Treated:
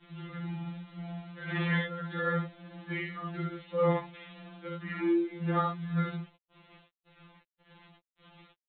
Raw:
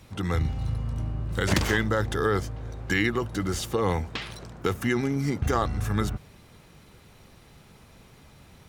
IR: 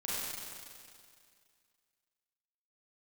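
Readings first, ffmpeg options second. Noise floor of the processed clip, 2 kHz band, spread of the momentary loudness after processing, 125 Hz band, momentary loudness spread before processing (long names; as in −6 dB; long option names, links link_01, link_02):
below −85 dBFS, −7.0 dB, 14 LU, −7.5 dB, 8 LU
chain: -filter_complex "[0:a]tremolo=f=1.8:d=0.72,adynamicequalizer=threshold=0.00398:dfrequency=130:dqfactor=2.6:tfrequency=130:tqfactor=2.6:attack=5:release=100:ratio=0.375:range=2.5:mode=cutabove:tftype=bell,asplit=2[link_01][link_02];[link_02]aecho=0:1:12|40|69:0.355|0.447|0.668[link_03];[link_01][link_03]amix=inputs=2:normalize=0,afreqshift=64,aresample=8000,acrusher=bits=7:mix=0:aa=0.000001,aresample=44100,afftfilt=real='re*2.83*eq(mod(b,8),0)':imag='im*2.83*eq(mod(b,8),0)':win_size=2048:overlap=0.75,volume=-5dB"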